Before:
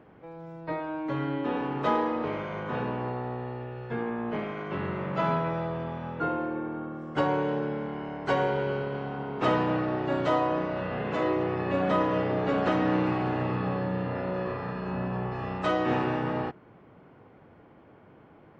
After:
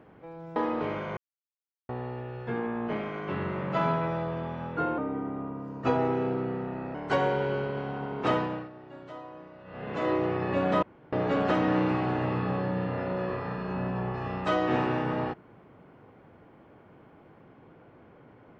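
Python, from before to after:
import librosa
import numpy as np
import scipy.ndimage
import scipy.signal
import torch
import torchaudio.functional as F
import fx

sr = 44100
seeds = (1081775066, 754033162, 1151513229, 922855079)

y = fx.edit(x, sr, fx.cut(start_s=0.56, length_s=1.43),
    fx.silence(start_s=2.6, length_s=0.72),
    fx.speed_span(start_s=6.41, length_s=1.71, speed=0.87),
    fx.fade_down_up(start_s=9.41, length_s=1.88, db=-18.0, fade_s=0.47),
    fx.room_tone_fill(start_s=12.0, length_s=0.3), tone=tone)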